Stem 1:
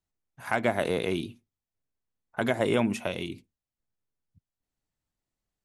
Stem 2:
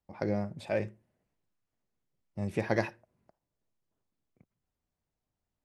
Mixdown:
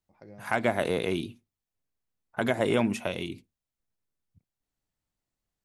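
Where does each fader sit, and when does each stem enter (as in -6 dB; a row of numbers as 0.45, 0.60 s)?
0.0, -18.0 dB; 0.00, 0.00 s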